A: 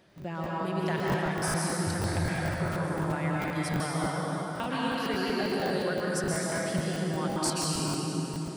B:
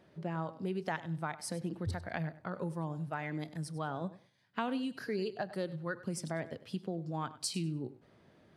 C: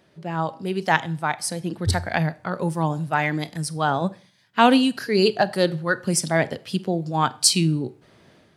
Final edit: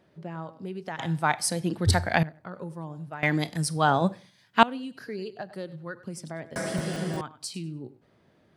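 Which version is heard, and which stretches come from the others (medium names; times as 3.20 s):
B
0.99–2.23 s: from C
3.23–4.63 s: from C
6.56–7.21 s: from A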